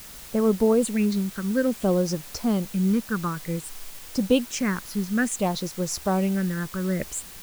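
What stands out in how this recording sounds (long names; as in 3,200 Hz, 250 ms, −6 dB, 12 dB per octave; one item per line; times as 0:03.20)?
phaser sweep stages 6, 0.56 Hz, lowest notch 620–3,100 Hz
a quantiser's noise floor 8 bits, dither triangular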